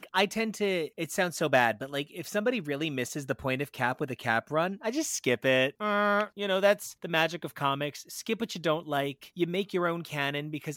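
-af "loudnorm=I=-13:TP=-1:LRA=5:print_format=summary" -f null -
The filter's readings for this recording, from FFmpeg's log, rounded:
Input Integrated:    -29.9 LUFS
Input True Peak:      -9.8 dBTP
Input LRA:             4.2 LU
Input Threshold:     -39.9 LUFS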